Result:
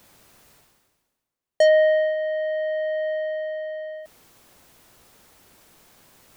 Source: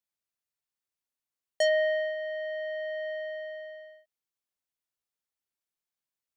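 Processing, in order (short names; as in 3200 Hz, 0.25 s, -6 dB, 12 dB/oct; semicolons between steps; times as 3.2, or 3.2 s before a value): tilt shelf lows +5.5 dB, about 1300 Hz; reverse; upward compressor, threshold -34 dBFS; reverse; gain +6 dB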